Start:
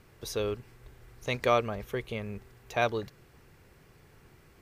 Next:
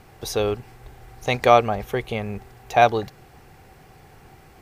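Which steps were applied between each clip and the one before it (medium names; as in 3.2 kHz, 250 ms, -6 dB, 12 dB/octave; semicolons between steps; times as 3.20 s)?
peaking EQ 770 Hz +14.5 dB 0.22 oct; trim +8 dB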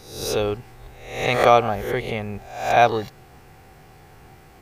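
reverse spectral sustain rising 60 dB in 0.64 s; trim -1 dB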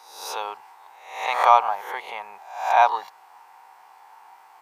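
resonant high-pass 930 Hz, resonance Q 9.8; trim -6 dB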